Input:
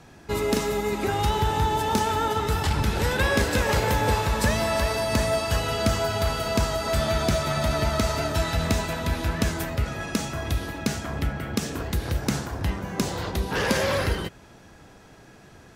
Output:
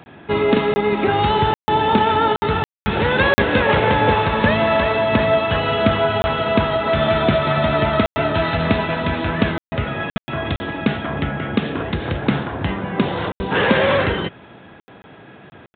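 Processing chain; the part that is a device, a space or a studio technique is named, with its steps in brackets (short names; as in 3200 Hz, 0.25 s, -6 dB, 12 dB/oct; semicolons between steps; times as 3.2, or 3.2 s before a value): call with lost packets (HPF 120 Hz 12 dB/oct; downsampling 8000 Hz; packet loss bursts); gain +8.5 dB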